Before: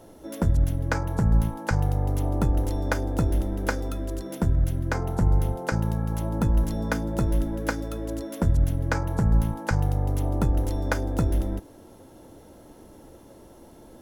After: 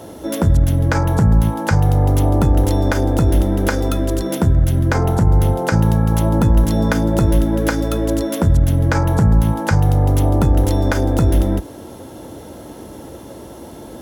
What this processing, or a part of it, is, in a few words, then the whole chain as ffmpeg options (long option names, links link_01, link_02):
mastering chain: -af "highpass=frequency=50:width=0.5412,highpass=frequency=50:width=1.3066,equalizer=frequency=3400:width_type=o:width=0.35:gain=2.5,acompressor=threshold=-27dB:ratio=1.5,alimiter=level_in=17.5dB:limit=-1dB:release=50:level=0:latency=1,volume=-3.5dB"